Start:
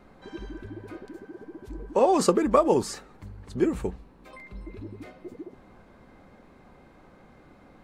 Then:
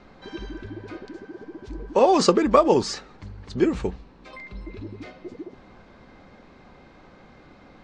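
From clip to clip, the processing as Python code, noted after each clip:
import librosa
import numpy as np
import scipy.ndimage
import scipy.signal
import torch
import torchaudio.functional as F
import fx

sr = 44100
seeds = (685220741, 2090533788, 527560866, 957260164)

y = scipy.signal.sosfilt(scipy.signal.butter(4, 5700.0, 'lowpass', fs=sr, output='sos'), x)
y = fx.high_shelf(y, sr, hz=3000.0, db=9.0)
y = y * 10.0 ** (3.0 / 20.0)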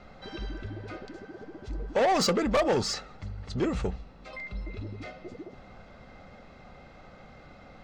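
y = x + 0.47 * np.pad(x, (int(1.5 * sr / 1000.0), 0))[:len(x)]
y = 10.0 ** (-19.0 / 20.0) * np.tanh(y / 10.0 ** (-19.0 / 20.0))
y = y * 10.0 ** (-1.0 / 20.0)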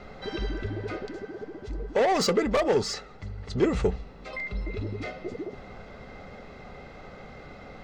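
y = fx.rider(x, sr, range_db=5, speed_s=2.0)
y = fx.small_body(y, sr, hz=(420.0, 2000.0), ring_ms=45, db=8)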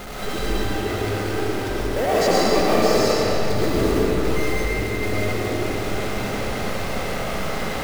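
y = x + 0.5 * 10.0 ** (-26.0 / 20.0) * np.sign(x)
y = fx.mod_noise(y, sr, seeds[0], snr_db=20)
y = fx.rev_freeverb(y, sr, rt60_s=4.5, hf_ratio=0.7, predelay_ms=65, drr_db=-8.0)
y = y * 10.0 ** (-4.5 / 20.0)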